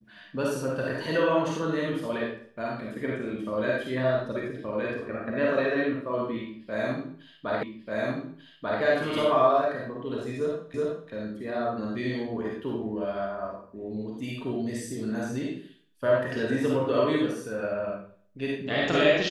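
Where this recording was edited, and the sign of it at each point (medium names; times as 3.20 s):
7.63 s: repeat of the last 1.19 s
10.74 s: repeat of the last 0.37 s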